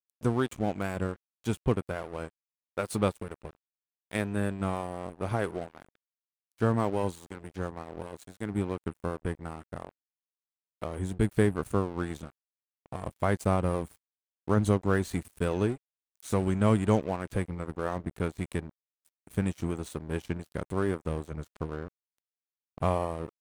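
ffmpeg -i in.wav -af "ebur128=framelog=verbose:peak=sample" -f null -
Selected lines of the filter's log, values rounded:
Integrated loudness:
  I:         -31.5 LUFS
  Threshold: -42.1 LUFS
Loudness range:
  LRA:         5.8 LU
  Threshold: -52.5 LUFS
  LRA low:   -35.4 LUFS
  LRA high:  -29.5 LUFS
Sample peak:
  Peak:       -9.9 dBFS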